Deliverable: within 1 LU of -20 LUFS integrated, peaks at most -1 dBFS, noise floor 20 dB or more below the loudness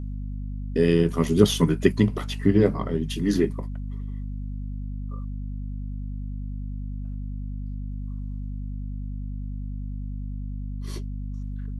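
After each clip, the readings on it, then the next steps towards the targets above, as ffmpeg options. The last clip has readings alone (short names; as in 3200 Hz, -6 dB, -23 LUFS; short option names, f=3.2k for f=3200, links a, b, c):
hum 50 Hz; harmonics up to 250 Hz; hum level -29 dBFS; loudness -27.5 LUFS; peak -1.5 dBFS; loudness target -20.0 LUFS
-> -af "bandreject=f=50:t=h:w=4,bandreject=f=100:t=h:w=4,bandreject=f=150:t=h:w=4,bandreject=f=200:t=h:w=4,bandreject=f=250:t=h:w=4"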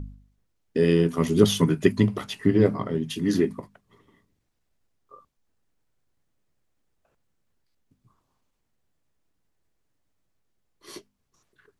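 hum none; loudness -23.0 LUFS; peak -2.5 dBFS; loudness target -20.0 LUFS
-> -af "volume=3dB,alimiter=limit=-1dB:level=0:latency=1"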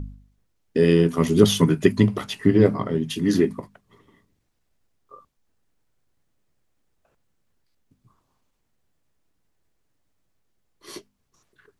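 loudness -20.0 LUFS; peak -1.0 dBFS; noise floor -72 dBFS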